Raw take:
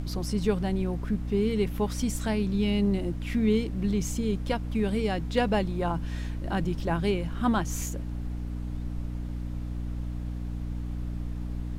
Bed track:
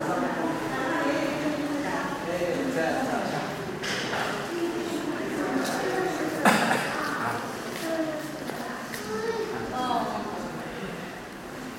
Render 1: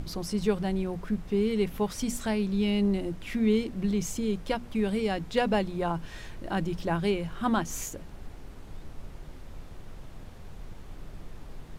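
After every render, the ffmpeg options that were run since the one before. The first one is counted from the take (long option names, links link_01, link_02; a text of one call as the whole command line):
ffmpeg -i in.wav -af "bandreject=frequency=60:width_type=h:width=6,bandreject=frequency=120:width_type=h:width=6,bandreject=frequency=180:width_type=h:width=6,bandreject=frequency=240:width_type=h:width=6,bandreject=frequency=300:width_type=h:width=6" out.wav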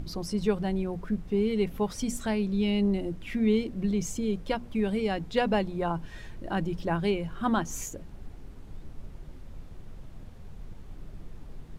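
ffmpeg -i in.wav -af "afftdn=noise_reduction=6:noise_floor=-45" out.wav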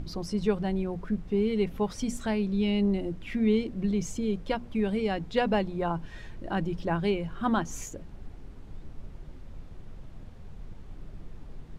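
ffmpeg -i in.wav -af "highshelf=frequency=10000:gain=-11.5" out.wav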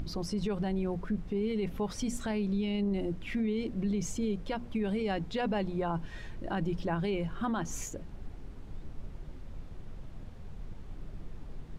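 ffmpeg -i in.wav -af "alimiter=limit=-24dB:level=0:latency=1:release=51,acompressor=mode=upward:threshold=-48dB:ratio=2.5" out.wav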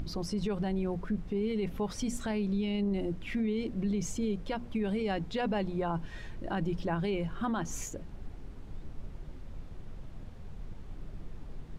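ffmpeg -i in.wav -af anull out.wav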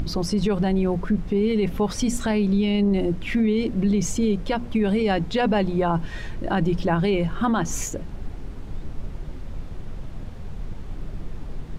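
ffmpeg -i in.wav -af "volume=10.5dB" out.wav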